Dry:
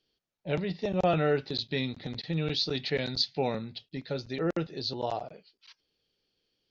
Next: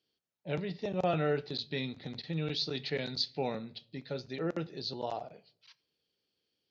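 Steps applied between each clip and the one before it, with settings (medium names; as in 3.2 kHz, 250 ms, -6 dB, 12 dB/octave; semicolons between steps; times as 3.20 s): high-pass 86 Hz; on a send at -17 dB: reverberation RT60 0.60 s, pre-delay 12 ms; on the sum: trim -4.5 dB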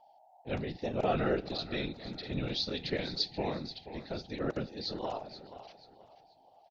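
whistle 760 Hz -58 dBFS; feedback delay 481 ms, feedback 34%, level -13.5 dB; whisper effect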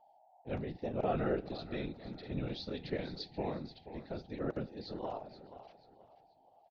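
low-pass 1.4 kHz 6 dB/octave; trim -2.5 dB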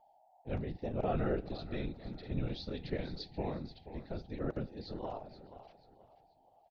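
bass shelf 87 Hz +12 dB; trim -1.5 dB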